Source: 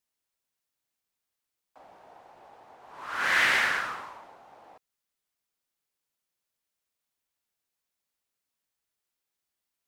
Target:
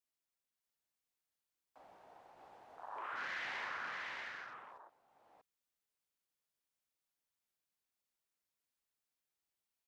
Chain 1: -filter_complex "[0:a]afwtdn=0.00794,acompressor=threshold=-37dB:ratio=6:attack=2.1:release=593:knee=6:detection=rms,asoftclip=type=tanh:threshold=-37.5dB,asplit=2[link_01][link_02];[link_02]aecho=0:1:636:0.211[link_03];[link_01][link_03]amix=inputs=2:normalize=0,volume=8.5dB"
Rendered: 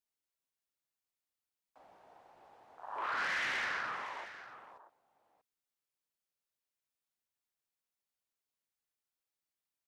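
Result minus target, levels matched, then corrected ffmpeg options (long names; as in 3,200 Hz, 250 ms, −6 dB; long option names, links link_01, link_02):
downward compressor: peak gain reduction −9.5 dB; echo-to-direct −10.5 dB
-filter_complex "[0:a]afwtdn=0.00794,acompressor=threshold=-48.5dB:ratio=6:attack=2.1:release=593:knee=6:detection=rms,asoftclip=type=tanh:threshold=-37.5dB,asplit=2[link_01][link_02];[link_02]aecho=0:1:636:0.708[link_03];[link_01][link_03]amix=inputs=2:normalize=0,volume=8.5dB"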